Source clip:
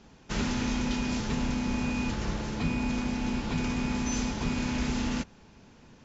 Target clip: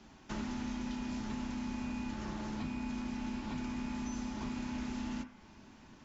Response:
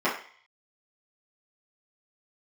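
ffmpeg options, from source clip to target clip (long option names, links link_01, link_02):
-filter_complex "[0:a]equalizer=frequency=470:width_type=o:width=0.61:gain=-9,asplit=2[link_01][link_02];[1:a]atrim=start_sample=2205[link_03];[link_02][link_03]afir=irnorm=-1:irlink=0,volume=-18dB[link_04];[link_01][link_04]amix=inputs=2:normalize=0,acrossover=split=110|1300[link_05][link_06][link_07];[link_05]acompressor=threshold=-45dB:ratio=4[link_08];[link_06]acompressor=threshold=-36dB:ratio=4[link_09];[link_07]acompressor=threshold=-50dB:ratio=4[link_10];[link_08][link_09][link_10]amix=inputs=3:normalize=0,volume=-2.5dB"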